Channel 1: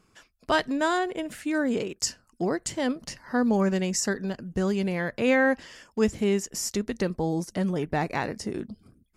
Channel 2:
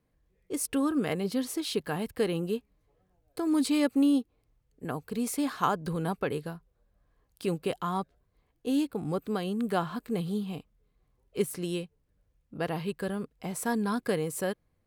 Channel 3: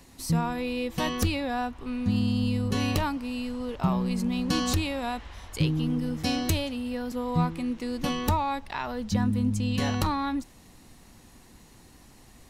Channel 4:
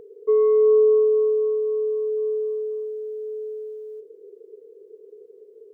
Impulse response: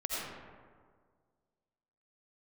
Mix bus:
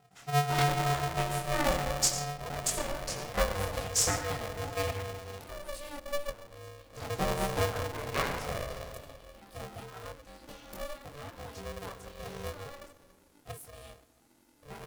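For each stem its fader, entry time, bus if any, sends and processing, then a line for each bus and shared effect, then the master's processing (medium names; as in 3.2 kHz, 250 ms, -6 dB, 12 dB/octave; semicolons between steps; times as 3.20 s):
-2.5 dB, 0.00 s, muted 5.01–6.96 s, send -6.5 dB, trance gate ".xx..x....xx" 129 bpm -12 dB
-14.5 dB, 2.10 s, send -22 dB, bass shelf 350 Hz +7 dB
-15.5 dB, 2.45 s, send -15.5 dB, compression, threshold -27 dBFS, peak gain reduction 8 dB; auto duck -9 dB, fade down 1.35 s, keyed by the first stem
-11.0 dB, 0.00 s, no send, formants replaced by sine waves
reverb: on, RT60 1.8 s, pre-delay 45 ms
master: treble shelf 8 kHz +11 dB; chorus voices 6, 0.65 Hz, delay 23 ms, depth 4.5 ms; polarity switched at an audio rate 290 Hz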